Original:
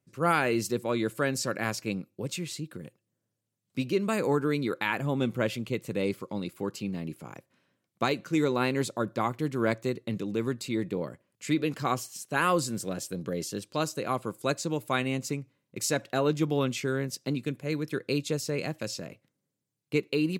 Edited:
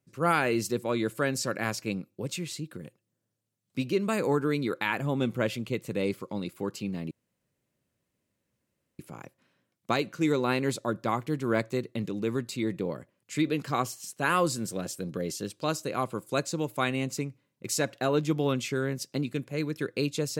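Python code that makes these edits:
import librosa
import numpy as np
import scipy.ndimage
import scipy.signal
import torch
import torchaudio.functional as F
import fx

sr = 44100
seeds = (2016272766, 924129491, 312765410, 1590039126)

y = fx.edit(x, sr, fx.insert_room_tone(at_s=7.11, length_s=1.88), tone=tone)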